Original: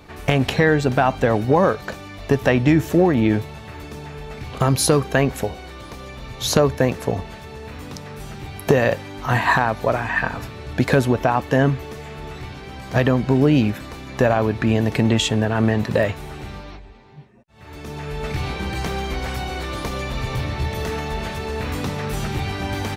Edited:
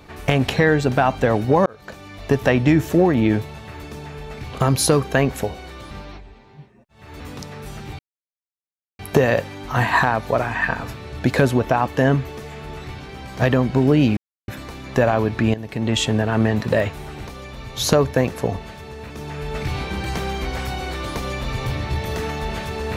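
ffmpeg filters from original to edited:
ffmpeg -i in.wav -filter_complex "[0:a]asplit=9[link_01][link_02][link_03][link_04][link_05][link_06][link_07][link_08][link_09];[link_01]atrim=end=1.66,asetpts=PTS-STARTPTS,afade=type=out:start_time=1.656:duration=0.004:curve=hsin[link_10];[link_02]atrim=start=1.66:end=5.912,asetpts=PTS-STARTPTS,afade=type=in:duration=0.76:curve=qsin[link_11];[link_03]atrim=start=16.498:end=17.792[link_12];[link_04]atrim=start=7.738:end=8.53,asetpts=PTS-STARTPTS,afade=type=out:start_time=0.788:duration=0.004:curve=hsin,apad=pad_dur=1[link_13];[link_05]atrim=start=8.53:end=13.71,asetpts=PTS-STARTPTS,afade=type=in:duration=0.004:curve=hsin,afade=type=out:start_time=5.176:duration=0.004:curve=hsin,apad=pad_dur=0.31[link_14];[link_06]atrim=start=13.71:end=14.77,asetpts=PTS-STARTPTS,afade=type=in:duration=0.004:curve=hsin,afade=type=out:start_time=1.056:duration=0.004:curve=hsin:silence=0.223872[link_15];[link_07]atrim=start=14.77:end=16.502,asetpts=PTS-STARTPTS,afade=type=in:duration=0.46:curve=qua:silence=0.223872[link_16];[link_08]atrim=start=5.908:end=7.742[link_17];[link_09]atrim=start=17.788[link_18];[link_10][link_11]concat=n=2:v=0:a=1[link_19];[link_19][link_12]acrossfade=duration=0.004:curve1=hsin:curve2=hsin[link_20];[link_13][link_14][link_15][link_16]concat=n=4:v=0:a=1[link_21];[link_20][link_21]acrossfade=duration=0.004:curve1=hsin:curve2=hsin[link_22];[link_22][link_17]acrossfade=duration=0.004:curve1=hsin:curve2=hsin[link_23];[link_23][link_18]acrossfade=duration=0.004:curve1=hsin:curve2=hsin" out.wav

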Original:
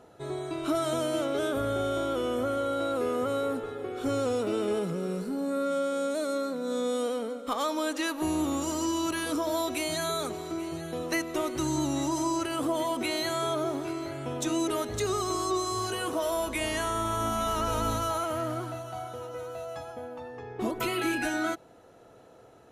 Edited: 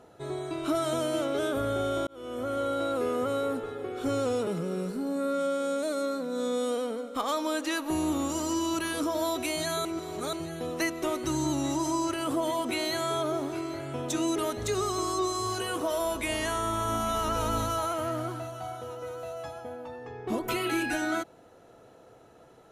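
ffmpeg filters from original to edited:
ffmpeg -i in.wav -filter_complex "[0:a]asplit=5[link_01][link_02][link_03][link_04][link_05];[link_01]atrim=end=2.07,asetpts=PTS-STARTPTS,afade=type=out:start_time=2.066:duration=0.004:curve=hsin[link_06];[link_02]atrim=start=2.07:end=4.472,asetpts=PTS-STARTPTS,afade=type=in:duration=0.55[link_07];[link_03]atrim=start=4.788:end=10.172[link_08];[link_04]atrim=start=10.168:end=10.652,asetpts=PTS-STARTPTS,areverse[link_09];[link_05]atrim=start=10.648[link_10];[link_06][link_07]concat=n=2:v=0:a=1[link_11];[link_11][link_08]acrossfade=duration=0.004:curve1=hsin:curve2=hsin[link_12];[link_12][link_09]acrossfade=duration=0.004:curve1=hsin:curve2=hsin[link_13];[link_13][link_10]acrossfade=duration=0.004:curve1=hsin:curve2=hsin" out.wav

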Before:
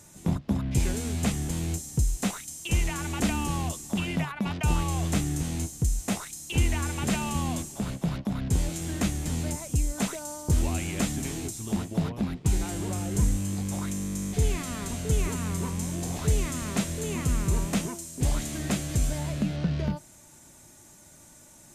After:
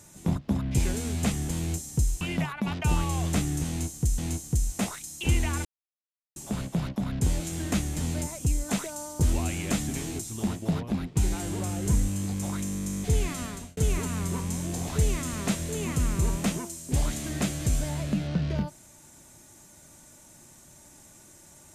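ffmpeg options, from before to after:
ffmpeg -i in.wav -filter_complex "[0:a]asplit=6[link_01][link_02][link_03][link_04][link_05][link_06];[link_01]atrim=end=2.212[link_07];[link_02]atrim=start=3.998:end=5.972[link_08];[link_03]atrim=start=5.468:end=6.94,asetpts=PTS-STARTPTS,afade=type=out:start_time=1.468:duration=0.004:curve=hsin[link_09];[link_04]atrim=start=6.94:end=7.65,asetpts=PTS-STARTPTS,volume=0[link_10];[link_05]atrim=start=7.65:end=15.06,asetpts=PTS-STARTPTS,afade=type=in:duration=0.004:curve=hsin,afade=type=out:start_time=7.06:duration=0.35[link_11];[link_06]atrim=start=15.06,asetpts=PTS-STARTPTS,afade=type=in:duration=0.004:curve=hsin[link_12];[link_07][link_08]acrossfade=duration=0.004:curve1=hsin:curve2=hsin[link_13];[link_09][link_10][link_11][link_12]concat=n=4:v=0:a=1[link_14];[link_13][link_14]acrossfade=duration=0.004:curve1=hsin:curve2=hsin" out.wav

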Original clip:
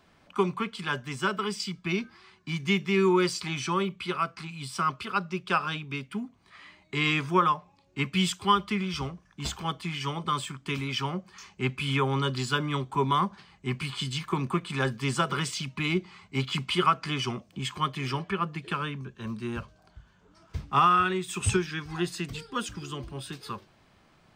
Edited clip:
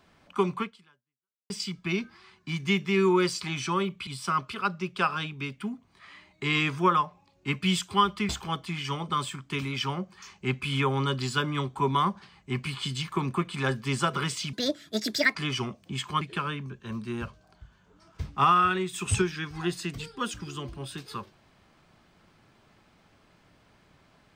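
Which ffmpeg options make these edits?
ffmpeg -i in.wav -filter_complex "[0:a]asplit=7[link_01][link_02][link_03][link_04][link_05][link_06][link_07];[link_01]atrim=end=1.5,asetpts=PTS-STARTPTS,afade=type=out:start_time=0.62:duration=0.88:curve=exp[link_08];[link_02]atrim=start=1.5:end=4.072,asetpts=PTS-STARTPTS,afade=type=in:duration=0.004:curve=hsin[link_09];[link_03]atrim=start=4.578:end=8.802[link_10];[link_04]atrim=start=9.448:end=15.694[link_11];[link_05]atrim=start=15.69:end=17.02,asetpts=PTS-STARTPTS,asetrate=71442,aresample=44100[link_12];[link_06]atrim=start=17.016:end=17.882[link_13];[link_07]atrim=start=18.558[link_14];[link_08][link_09]concat=n=2:v=0:a=1[link_15];[link_15][link_10]acrossfade=duration=0.004:curve1=hsin:curve2=hsin[link_16];[link_16][link_11]acrossfade=duration=0.004:curve1=hsin:curve2=hsin[link_17];[link_17][link_12]acrossfade=duration=0.004:curve1=hsin:curve2=hsin[link_18];[link_18][link_13]acrossfade=duration=0.004:curve1=hsin:curve2=hsin[link_19];[link_19][link_14]acrossfade=duration=0.004:curve1=hsin:curve2=hsin" out.wav

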